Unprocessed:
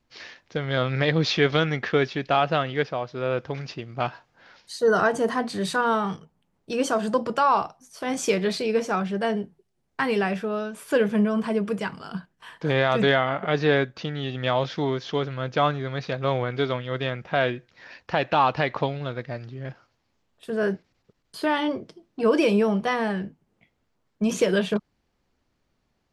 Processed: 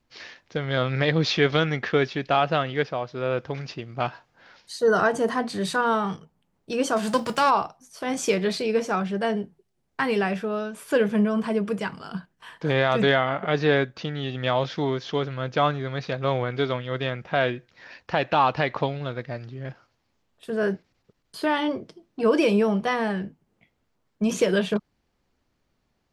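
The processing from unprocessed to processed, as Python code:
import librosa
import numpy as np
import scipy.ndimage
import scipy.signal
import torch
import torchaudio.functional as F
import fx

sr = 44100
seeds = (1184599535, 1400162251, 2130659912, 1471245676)

y = fx.envelope_flatten(x, sr, power=0.6, at=(6.96, 7.49), fade=0.02)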